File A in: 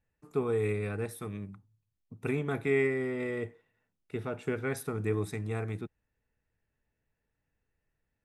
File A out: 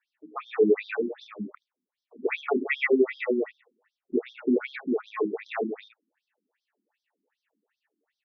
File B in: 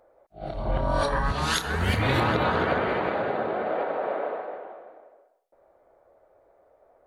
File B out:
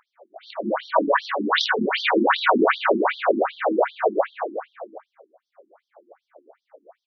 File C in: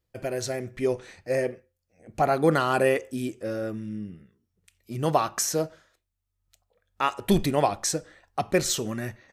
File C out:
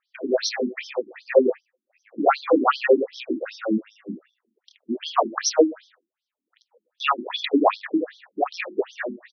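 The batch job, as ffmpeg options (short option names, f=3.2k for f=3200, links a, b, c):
-af "aexciter=amount=5.8:drive=4.4:freq=9.2k,aecho=1:1:28|76:0.562|0.316,alimiter=level_in=12.5dB:limit=-1dB:release=50:level=0:latency=1,afftfilt=real='re*between(b*sr/1024,250*pow(4500/250,0.5+0.5*sin(2*PI*2.6*pts/sr))/1.41,250*pow(4500/250,0.5+0.5*sin(2*PI*2.6*pts/sr))*1.41)':imag='im*between(b*sr/1024,250*pow(4500/250,0.5+0.5*sin(2*PI*2.6*pts/sr))/1.41,250*pow(4500/250,0.5+0.5*sin(2*PI*2.6*pts/sr))*1.41)':win_size=1024:overlap=0.75"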